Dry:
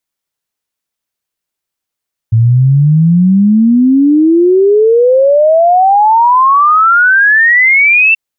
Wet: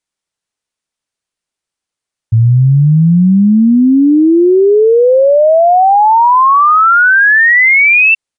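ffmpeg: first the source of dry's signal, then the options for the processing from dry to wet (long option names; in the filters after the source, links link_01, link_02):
-f lavfi -i "aevalsrc='0.631*clip(min(t,5.83-t)/0.01,0,1)*sin(2*PI*110*5.83/log(2700/110)*(exp(log(2700/110)*t/5.83)-1))':duration=5.83:sample_rate=44100"
-af "aresample=22050,aresample=44100"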